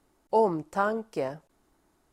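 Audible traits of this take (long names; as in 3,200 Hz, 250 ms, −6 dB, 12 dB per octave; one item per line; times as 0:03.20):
background noise floor −69 dBFS
spectral slope −2.0 dB per octave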